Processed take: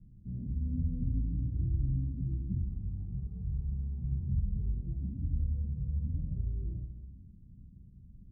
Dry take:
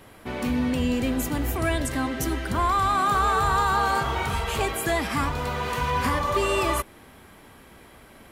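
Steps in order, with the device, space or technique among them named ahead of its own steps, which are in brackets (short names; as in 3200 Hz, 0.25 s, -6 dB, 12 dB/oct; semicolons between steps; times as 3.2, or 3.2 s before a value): club heard from the street (limiter -20 dBFS, peak gain reduction 8 dB; LPF 160 Hz 24 dB/oct; reverb RT60 1.1 s, pre-delay 3 ms, DRR -2.5 dB)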